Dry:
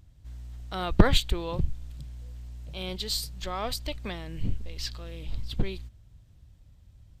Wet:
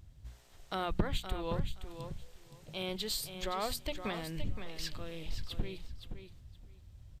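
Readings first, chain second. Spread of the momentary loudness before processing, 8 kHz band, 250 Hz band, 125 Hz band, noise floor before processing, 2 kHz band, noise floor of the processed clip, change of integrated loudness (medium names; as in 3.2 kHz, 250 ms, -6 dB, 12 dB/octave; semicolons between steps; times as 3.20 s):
20 LU, -5.0 dB, -8.5 dB, -9.5 dB, -57 dBFS, -6.5 dB, -58 dBFS, -8.0 dB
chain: hum notches 60/120/180/240/300 Hz; dynamic bell 5 kHz, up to -6 dB, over -48 dBFS, Q 1.3; compression 3:1, threshold -32 dBFS, peak gain reduction 15.5 dB; on a send: feedback delay 519 ms, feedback 16%, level -9 dB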